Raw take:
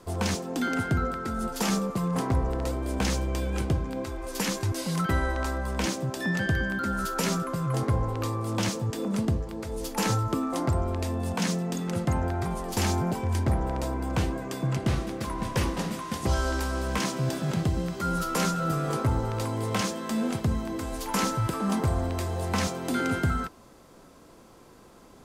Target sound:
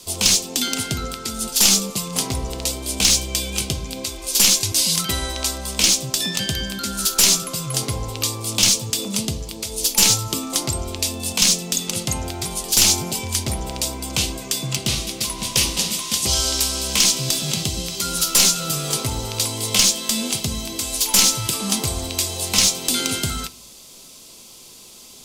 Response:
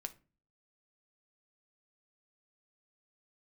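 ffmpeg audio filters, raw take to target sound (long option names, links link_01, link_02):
-filter_complex "[0:a]aexciter=amount=13.2:drive=3:freq=2500,aeval=exprs='clip(val(0),-1,0.398)':channel_layout=same,asplit=2[link_01][link_02];[1:a]atrim=start_sample=2205,highshelf=frequency=7200:gain=-7.5[link_03];[link_02][link_03]afir=irnorm=-1:irlink=0,volume=7.5dB[link_04];[link_01][link_04]amix=inputs=2:normalize=0,volume=-9dB"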